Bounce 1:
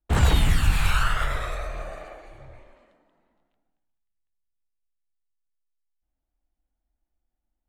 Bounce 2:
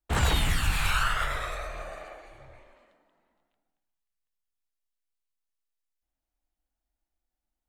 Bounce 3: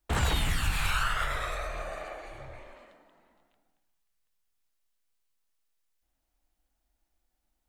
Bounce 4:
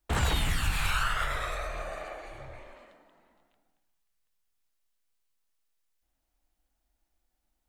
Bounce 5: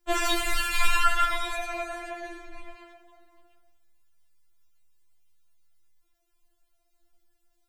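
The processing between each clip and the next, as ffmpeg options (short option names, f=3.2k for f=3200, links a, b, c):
-af "lowshelf=f=490:g=-7"
-af "acompressor=threshold=-50dB:ratio=1.5,volume=7.5dB"
-af anull
-af "afftfilt=real='re*4*eq(mod(b,16),0)':imag='im*4*eq(mod(b,16),0)':win_size=2048:overlap=0.75,volume=7.5dB"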